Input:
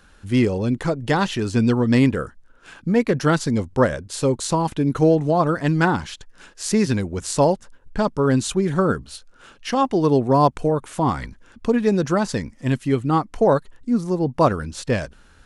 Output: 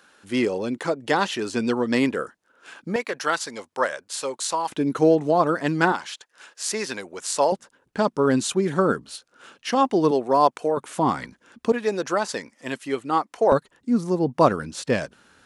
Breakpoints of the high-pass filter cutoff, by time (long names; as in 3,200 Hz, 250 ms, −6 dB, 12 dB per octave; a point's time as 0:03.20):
320 Hz
from 0:02.96 730 Hz
from 0:04.70 250 Hz
from 0:05.92 570 Hz
from 0:07.52 210 Hz
from 0:10.11 420 Hz
from 0:10.77 200 Hz
from 0:11.72 450 Hz
from 0:13.52 170 Hz